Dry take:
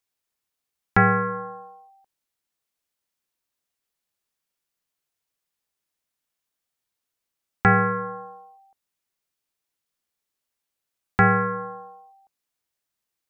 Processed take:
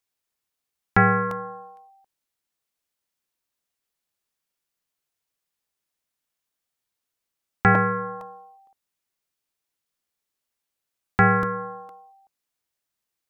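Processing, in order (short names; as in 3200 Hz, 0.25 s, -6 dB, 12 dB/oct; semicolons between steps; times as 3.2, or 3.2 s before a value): crackling interface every 0.46 s, samples 64, repeat, from 0.39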